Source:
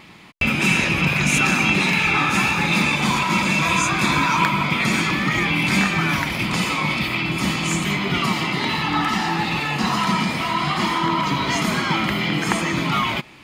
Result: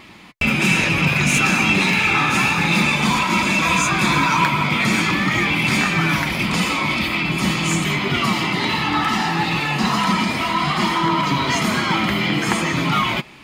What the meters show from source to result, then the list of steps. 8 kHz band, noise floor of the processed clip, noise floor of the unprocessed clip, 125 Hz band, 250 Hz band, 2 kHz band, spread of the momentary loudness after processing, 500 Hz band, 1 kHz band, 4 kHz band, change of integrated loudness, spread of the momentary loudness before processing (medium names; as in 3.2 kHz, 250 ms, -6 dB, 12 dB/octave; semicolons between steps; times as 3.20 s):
+1.5 dB, -24 dBFS, -26 dBFS, +1.5 dB, +1.5 dB, +1.5 dB, 4 LU, +2.0 dB, +1.5 dB, +2.0 dB, +1.5 dB, 5 LU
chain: in parallel at -4 dB: hard clipper -16.5 dBFS, distortion -13 dB; on the sum: flange 0.29 Hz, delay 2.8 ms, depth 7.7 ms, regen -56%; trim +2 dB